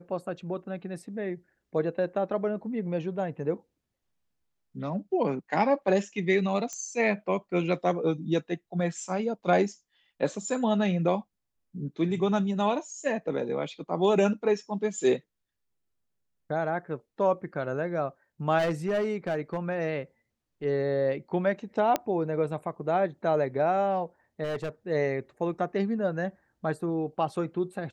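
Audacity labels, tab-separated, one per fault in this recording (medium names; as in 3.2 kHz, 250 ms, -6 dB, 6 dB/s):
6.730000	6.730000	pop -23 dBFS
18.580000	19.580000	clipped -23 dBFS
21.960000	21.960000	pop -12 dBFS
24.430000	24.690000	clipped -28 dBFS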